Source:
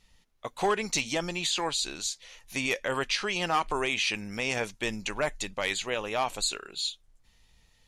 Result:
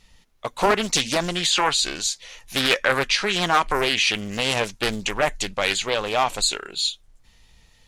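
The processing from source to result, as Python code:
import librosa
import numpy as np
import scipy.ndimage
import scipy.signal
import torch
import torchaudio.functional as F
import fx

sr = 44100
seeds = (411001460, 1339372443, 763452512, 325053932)

y = fx.dynamic_eq(x, sr, hz=1400.0, q=1.2, threshold_db=-45.0, ratio=4.0, max_db=7, at=(1.5, 2.92))
y = fx.doppler_dist(y, sr, depth_ms=0.55)
y = F.gain(torch.from_numpy(y), 8.0).numpy()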